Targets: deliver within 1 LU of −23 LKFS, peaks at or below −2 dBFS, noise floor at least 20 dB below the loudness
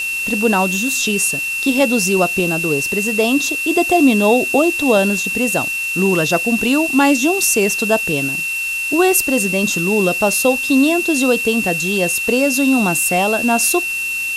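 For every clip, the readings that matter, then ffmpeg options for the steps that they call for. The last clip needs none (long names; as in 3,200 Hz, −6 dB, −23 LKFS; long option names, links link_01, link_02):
interfering tone 2,700 Hz; level of the tone −19 dBFS; background noise floor −22 dBFS; target noise floor −35 dBFS; integrated loudness −15.0 LKFS; sample peak −2.0 dBFS; target loudness −23.0 LKFS
→ -af "bandreject=frequency=2700:width=30"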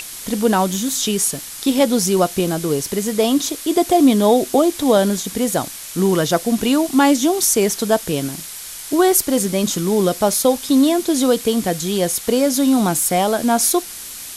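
interfering tone none found; background noise floor −33 dBFS; target noise floor −37 dBFS
→ -af "afftdn=noise_reduction=6:noise_floor=-33"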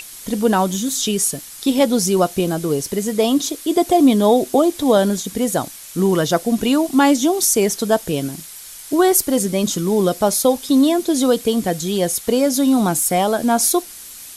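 background noise floor −37 dBFS; target noise floor −38 dBFS
→ -af "afftdn=noise_reduction=6:noise_floor=-37"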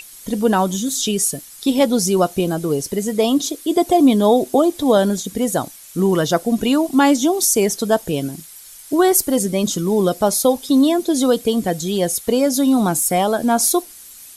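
background noise floor −40 dBFS; integrated loudness −17.5 LKFS; sample peak −4.0 dBFS; target loudness −23.0 LKFS
→ -af "volume=-5.5dB"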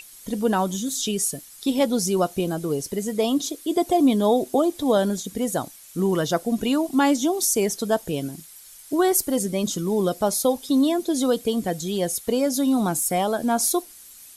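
integrated loudness −23.0 LKFS; sample peak −9.5 dBFS; background noise floor −46 dBFS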